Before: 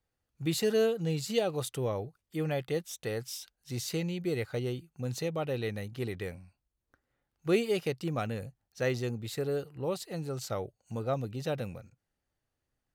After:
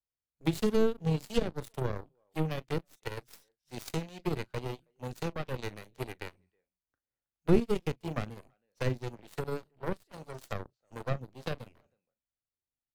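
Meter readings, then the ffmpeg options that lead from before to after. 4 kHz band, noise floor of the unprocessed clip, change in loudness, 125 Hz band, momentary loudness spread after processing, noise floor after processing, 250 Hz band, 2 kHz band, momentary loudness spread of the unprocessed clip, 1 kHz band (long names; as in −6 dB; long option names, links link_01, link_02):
−5.0 dB, −85 dBFS, −1.5 dB, −0.5 dB, 16 LU, below −85 dBFS, +0.5 dB, −2.5 dB, 11 LU, 0.0 dB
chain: -filter_complex "[0:a]asplit=2[link_01][link_02];[link_02]adelay=38,volume=-12dB[link_03];[link_01][link_03]amix=inputs=2:normalize=0,asplit=2[link_04][link_05];[link_05]adelay=320,highpass=300,lowpass=3400,asoftclip=type=hard:threshold=-23.5dB,volume=-20dB[link_06];[link_04][link_06]amix=inputs=2:normalize=0,aeval=exprs='0.178*(cos(1*acos(clip(val(0)/0.178,-1,1)))-cos(1*PI/2))+0.0708*(cos(2*acos(clip(val(0)/0.178,-1,1)))-cos(2*PI/2))+0.00355*(cos(3*acos(clip(val(0)/0.178,-1,1)))-cos(3*PI/2))+0.0251*(cos(7*acos(clip(val(0)/0.178,-1,1)))-cos(7*PI/2))+0.00141*(cos(8*acos(clip(val(0)/0.178,-1,1)))-cos(8*PI/2))':channel_layout=same,acrossover=split=340[link_07][link_08];[link_08]acompressor=threshold=-44dB:ratio=6[link_09];[link_07][link_09]amix=inputs=2:normalize=0,volume=7.5dB"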